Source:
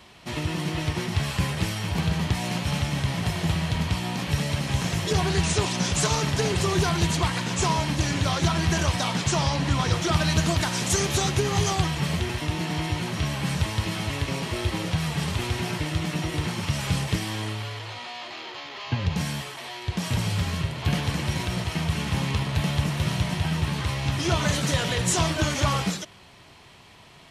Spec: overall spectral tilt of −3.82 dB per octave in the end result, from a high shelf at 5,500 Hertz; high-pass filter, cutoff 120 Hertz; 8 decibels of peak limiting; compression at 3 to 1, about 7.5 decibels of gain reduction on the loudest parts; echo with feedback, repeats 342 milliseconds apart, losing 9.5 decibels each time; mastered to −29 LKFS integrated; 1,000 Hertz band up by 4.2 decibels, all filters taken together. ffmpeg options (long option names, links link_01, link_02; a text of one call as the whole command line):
ffmpeg -i in.wav -af "highpass=120,equalizer=frequency=1000:width_type=o:gain=5,highshelf=frequency=5500:gain=3.5,acompressor=threshold=-28dB:ratio=3,alimiter=limit=-22dB:level=0:latency=1,aecho=1:1:342|684|1026|1368:0.335|0.111|0.0365|0.012,volume=2dB" out.wav